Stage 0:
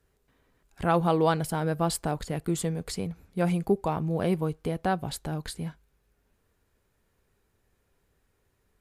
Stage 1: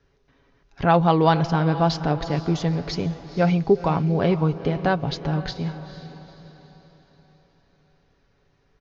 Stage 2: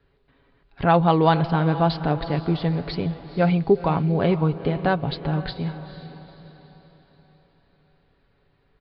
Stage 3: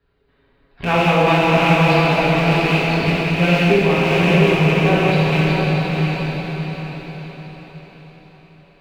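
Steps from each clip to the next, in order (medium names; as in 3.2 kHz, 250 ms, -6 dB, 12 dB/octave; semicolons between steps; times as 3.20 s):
steep low-pass 6.3 kHz 96 dB/octave; comb 7.2 ms, depth 37%; echo that smears into a reverb 469 ms, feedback 45%, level -13 dB; trim +6 dB
steep low-pass 4.6 kHz 72 dB/octave
rattle on loud lows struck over -22 dBFS, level -11 dBFS; echo that smears into a reverb 665 ms, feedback 41%, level -4 dB; plate-style reverb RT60 3.2 s, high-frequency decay 0.8×, DRR -8 dB; trim -5 dB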